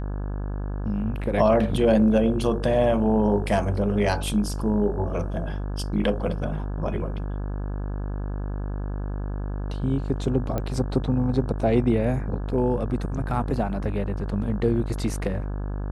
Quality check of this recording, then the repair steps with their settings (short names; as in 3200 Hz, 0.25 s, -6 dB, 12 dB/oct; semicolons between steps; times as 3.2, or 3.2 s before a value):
buzz 50 Hz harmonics 34 -29 dBFS
10.58 pop -15 dBFS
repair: de-click; de-hum 50 Hz, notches 34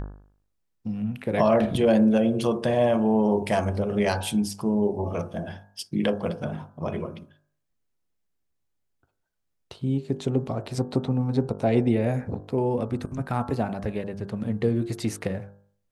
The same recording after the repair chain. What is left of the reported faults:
none